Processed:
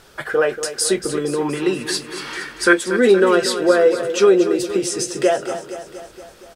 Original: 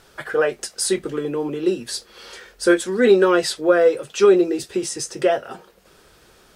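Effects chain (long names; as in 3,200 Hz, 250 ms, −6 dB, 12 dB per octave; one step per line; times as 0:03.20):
0:01.41–0:02.73: octave-band graphic EQ 500/1,000/2,000 Hz −5/+8/+9 dB
in parallel at −3 dB: downward compressor, threshold −21 dBFS, peak gain reduction 12 dB
on the sum: repeating echo 235 ms, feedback 60%, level −11 dB
level −1 dB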